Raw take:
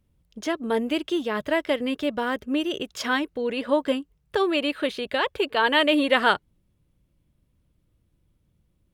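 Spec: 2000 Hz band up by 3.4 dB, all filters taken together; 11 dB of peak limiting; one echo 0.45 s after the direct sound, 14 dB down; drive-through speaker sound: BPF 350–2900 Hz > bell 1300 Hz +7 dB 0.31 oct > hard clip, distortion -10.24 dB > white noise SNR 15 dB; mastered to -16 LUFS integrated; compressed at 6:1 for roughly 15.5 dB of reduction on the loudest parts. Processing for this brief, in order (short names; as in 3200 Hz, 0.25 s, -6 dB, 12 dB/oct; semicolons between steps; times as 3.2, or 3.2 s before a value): bell 2000 Hz +3.5 dB; compressor 6:1, threshold -31 dBFS; limiter -29.5 dBFS; BPF 350–2900 Hz; bell 1300 Hz +7 dB 0.31 oct; echo 0.45 s -14 dB; hard clip -37 dBFS; white noise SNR 15 dB; gain +26.5 dB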